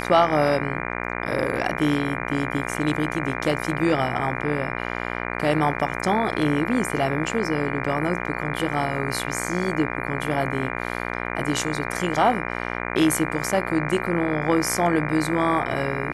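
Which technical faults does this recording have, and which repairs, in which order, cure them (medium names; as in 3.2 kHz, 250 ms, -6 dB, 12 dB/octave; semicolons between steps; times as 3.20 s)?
buzz 60 Hz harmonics 40 -29 dBFS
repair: de-hum 60 Hz, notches 40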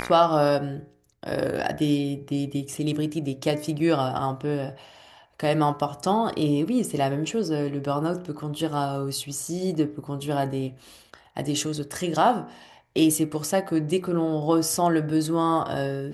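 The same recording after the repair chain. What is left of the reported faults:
nothing left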